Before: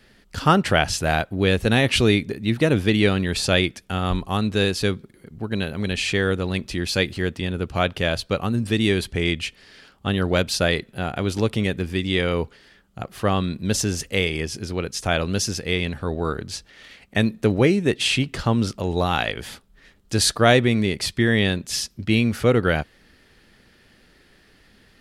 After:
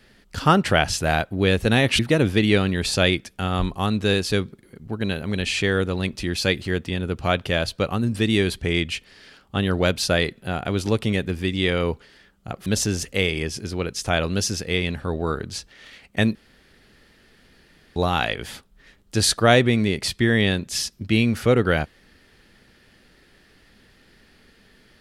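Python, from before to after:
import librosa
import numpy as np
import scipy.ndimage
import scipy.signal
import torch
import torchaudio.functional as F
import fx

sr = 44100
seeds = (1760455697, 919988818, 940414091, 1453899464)

y = fx.edit(x, sr, fx.cut(start_s=1.99, length_s=0.51),
    fx.cut(start_s=13.17, length_s=0.47),
    fx.room_tone_fill(start_s=17.33, length_s=1.61), tone=tone)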